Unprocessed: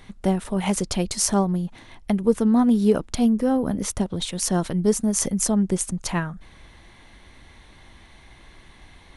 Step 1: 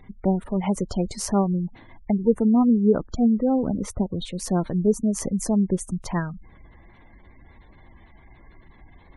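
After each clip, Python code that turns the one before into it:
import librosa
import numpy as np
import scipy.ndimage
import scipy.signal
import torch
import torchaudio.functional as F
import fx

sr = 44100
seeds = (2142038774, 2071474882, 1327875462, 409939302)

y = fx.high_shelf(x, sr, hz=2600.0, db=-9.5)
y = fx.spec_gate(y, sr, threshold_db=-25, keep='strong')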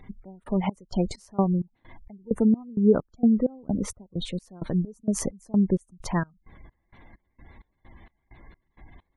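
y = fx.step_gate(x, sr, bpm=130, pattern='xx..xx..', floor_db=-24.0, edge_ms=4.5)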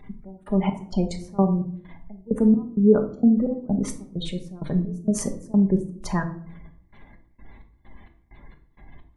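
y = fx.room_shoebox(x, sr, seeds[0], volume_m3=740.0, walls='furnished', distance_m=1.3)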